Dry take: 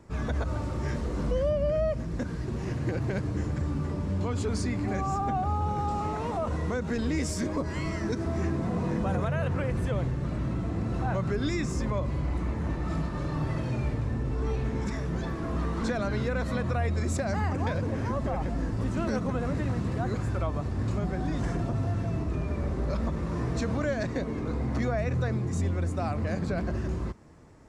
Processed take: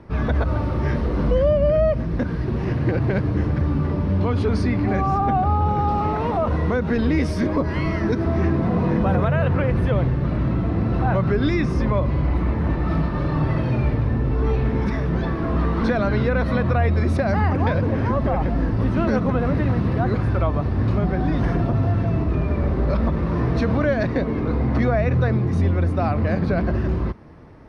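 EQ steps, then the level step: boxcar filter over 6 samples; +9.0 dB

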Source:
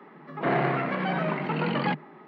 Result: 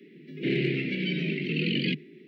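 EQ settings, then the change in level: elliptic band-stop 380–2400 Hz, stop band 70 dB; bass shelf 330 Hz -5.5 dB; dynamic bell 3.4 kHz, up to +3 dB, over -47 dBFS, Q 0.98; +5.5 dB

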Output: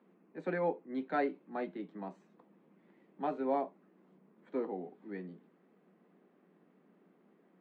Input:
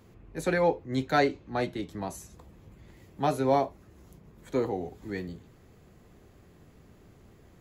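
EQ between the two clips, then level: Chebyshev band-pass 180–8900 Hz, order 5; distance through air 490 m; -6.0 dB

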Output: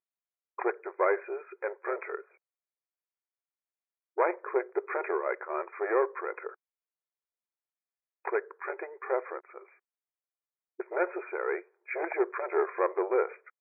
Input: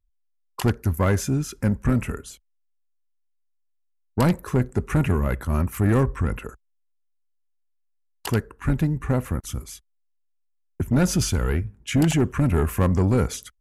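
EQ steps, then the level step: brick-wall FIR high-pass 350 Hz; brick-wall FIR low-pass 2.5 kHz; distance through air 240 m; 0.0 dB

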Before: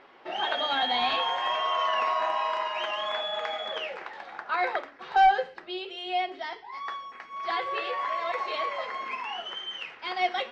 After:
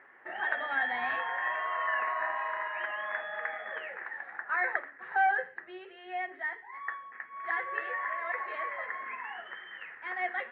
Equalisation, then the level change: high-pass 65 Hz; four-pole ladder low-pass 1.9 kHz, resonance 80%; peaking EQ 110 Hz +7.5 dB 0.21 oct; +3.0 dB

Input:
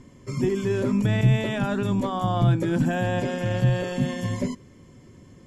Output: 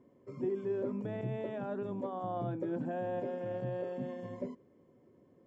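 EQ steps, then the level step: band-pass filter 500 Hz, Q 1.3; -7.0 dB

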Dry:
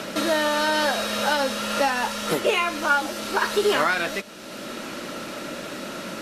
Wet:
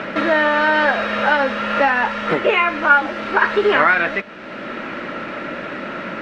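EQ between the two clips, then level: resonant low-pass 2 kHz, resonance Q 1.8; +4.5 dB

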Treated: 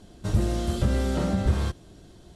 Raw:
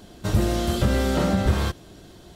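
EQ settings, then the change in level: low-pass 11 kHz 24 dB/octave; tilt EQ -1.5 dB/octave; treble shelf 6 kHz +10 dB; -7.0 dB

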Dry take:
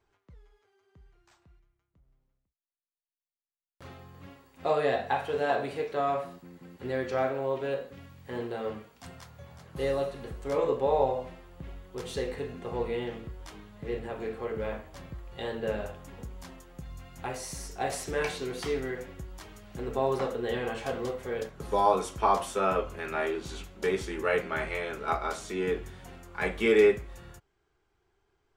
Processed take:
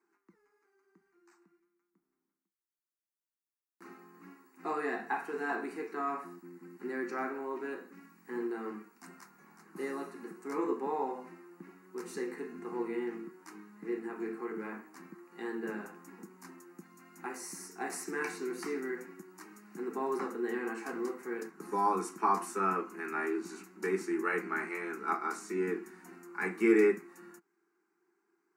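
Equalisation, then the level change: elliptic high-pass 190 Hz, stop band 40 dB; peaking EQ 340 Hz +12.5 dB 0.24 oct; static phaser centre 1.4 kHz, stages 4; 0.0 dB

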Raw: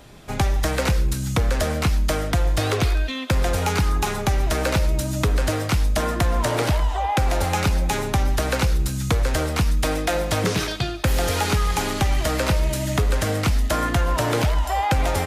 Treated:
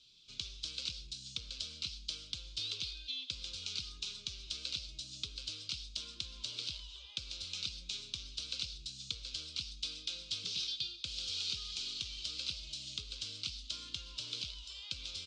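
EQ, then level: inverse Chebyshev high-pass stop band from 2 kHz, stop band 40 dB; elliptic low-pass 8.5 kHz, stop band 40 dB; distance through air 320 m; +8.5 dB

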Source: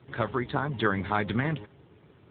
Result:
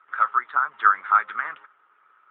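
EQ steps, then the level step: resonant high-pass 1.3 kHz, resonance Q 9.2; low-pass 1.9 kHz 12 dB/octave; -1.0 dB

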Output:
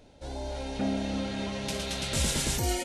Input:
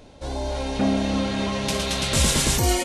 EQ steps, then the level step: band-stop 1.1 kHz, Q 7.4; -8.0 dB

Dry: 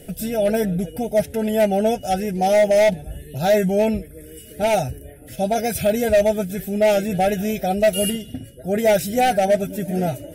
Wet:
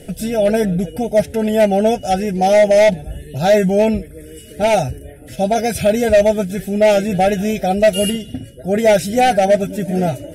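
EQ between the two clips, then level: low-pass 9.6 kHz 12 dB/octave; +4.5 dB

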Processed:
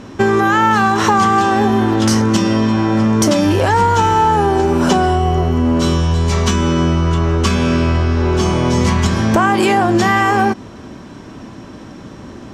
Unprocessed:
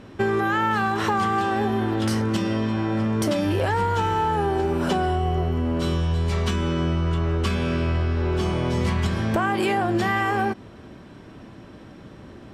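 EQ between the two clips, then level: fifteen-band graphic EQ 250 Hz +4 dB, 1 kHz +4 dB, 6.3 kHz +10 dB; +7.5 dB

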